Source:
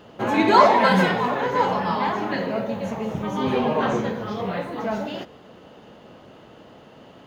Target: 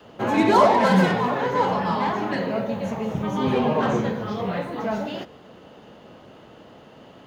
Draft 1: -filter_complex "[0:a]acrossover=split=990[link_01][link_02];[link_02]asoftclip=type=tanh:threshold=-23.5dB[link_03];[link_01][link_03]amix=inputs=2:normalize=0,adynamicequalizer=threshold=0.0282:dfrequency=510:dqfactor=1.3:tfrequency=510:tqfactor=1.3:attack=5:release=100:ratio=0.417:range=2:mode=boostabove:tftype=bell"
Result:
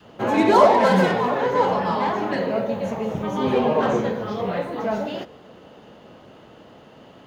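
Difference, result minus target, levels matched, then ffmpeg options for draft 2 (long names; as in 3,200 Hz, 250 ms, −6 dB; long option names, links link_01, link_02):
125 Hz band −3.5 dB
-filter_complex "[0:a]acrossover=split=990[link_01][link_02];[link_02]asoftclip=type=tanh:threshold=-23.5dB[link_03];[link_01][link_03]amix=inputs=2:normalize=0,adynamicequalizer=threshold=0.0282:dfrequency=140:dqfactor=1.3:tfrequency=140:tqfactor=1.3:attack=5:release=100:ratio=0.417:range=2:mode=boostabove:tftype=bell"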